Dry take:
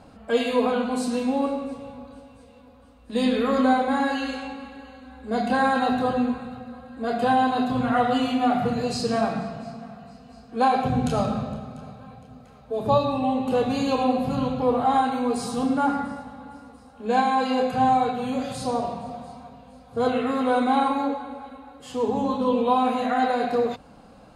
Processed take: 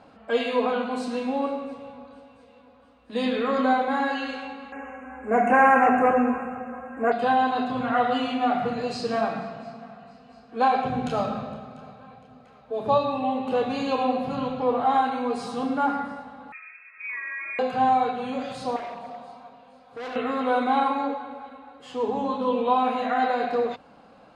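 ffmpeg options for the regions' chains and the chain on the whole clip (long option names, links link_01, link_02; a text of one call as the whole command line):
ffmpeg -i in.wav -filter_complex "[0:a]asettb=1/sr,asplit=3[link_01][link_02][link_03];[link_01]atrim=end=4.724[link_04];[link_02]atrim=start=4.72:end=7.12,asetpts=PTS-STARTPTS,afade=type=in:duration=0.004:curve=qsin,afade=type=out:start_time=2.396:duration=0.004:curve=qsin,equalizer=frequency=130:width=1.2:gain=-8,aeval=exprs='0.282*sin(PI/2*1.58*val(0)/0.282)':channel_layout=same,asuperstop=centerf=4000:order=8:qfactor=1.1[link_05];[link_03]atrim=start=7.116[link_06];[link_04][link_05]acrossfade=duration=0.004:curve1=hsin:curve2=qsin[link_07];[link_07][link_06]acrossfade=duration=0.004:curve1=qsin:curve2=hsin,asettb=1/sr,asplit=3[link_08][link_09][link_10];[link_08]atrim=end=16.524[link_11];[link_09]atrim=start=16.52:end=17.59,asetpts=PTS-STARTPTS,afade=type=in:duration=0.004:curve=qsin,afade=type=out:start_time=1.066:duration=0.004:curve=qsin,acompressor=threshold=-30dB:ratio=10:attack=3.2:release=140:knee=1:detection=peak,volume=27.5dB,asoftclip=hard,volume=-27.5dB,lowpass=frequency=2300:width_type=q:width=0.5098,lowpass=frequency=2300:width_type=q:width=0.6013,lowpass=frequency=2300:width_type=q:width=0.9,lowpass=frequency=2300:width_type=q:width=2.563,afreqshift=-2700[link_12];[link_10]atrim=start=17.586[link_13];[link_11][link_12]acrossfade=duration=0.004:curve1=hsin:curve2=qsin[link_14];[link_14][link_13]acrossfade=duration=0.004:curve1=qsin:curve2=hsin,asettb=1/sr,asplit=3[link_15][link_16][link_17];[link_15]atrim=end=18.764[link_18];[link_16]atrim=start=18.76:end=20.16,asetpts=PTS-STARTPTS,afade=type=in:duration=0.004:curve=qsin,afade=type=out:start_time=1.396:duration=0.004:curve=qsin,lowshelf=frequency=190:gain=-10,volume=31.5dB,asoftclip=hard,volume=-31.5dB[link_19];[link_17]atrim=start=20.156[link_20];[link_18][link_19]acrossfade=duration=0.004:curve1=hsin:curve2=qsin[link_21];[link_21][link_20]acrossfade=duration=0.004:curve1=qsin:curve2=hsin,lowpass=2800,aemphasis=mode=production:type=bsi" out.wav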